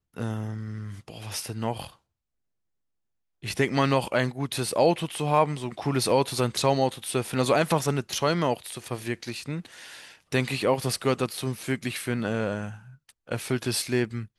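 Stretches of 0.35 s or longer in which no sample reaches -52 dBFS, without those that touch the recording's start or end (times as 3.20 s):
1.96–3.42 s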